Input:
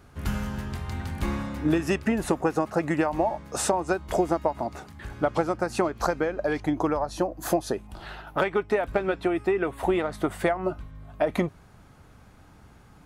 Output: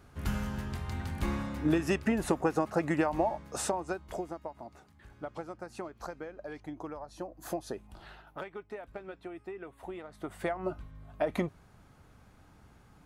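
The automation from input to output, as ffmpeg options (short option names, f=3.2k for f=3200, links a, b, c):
-af "volume=15dB,afade=t=out:st=3.18:d=1.15:silence=0.251189,afade=t=in:st=7.05:d=0.89:silence=0.446684,afade=t=out:st=7.94:d=0.53:silence=0.354813,afade=t=in:st=10.1:d=0.62:silence=0.251189"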